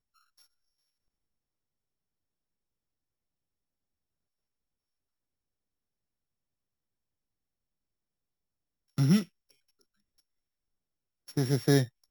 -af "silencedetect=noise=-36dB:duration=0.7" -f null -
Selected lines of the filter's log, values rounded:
silence_start: 0.00
silence_end: 8.98 | silence_duration: 8.98
silence_start: 9.23
silence_end: 11.29 | silence_duration: 2.06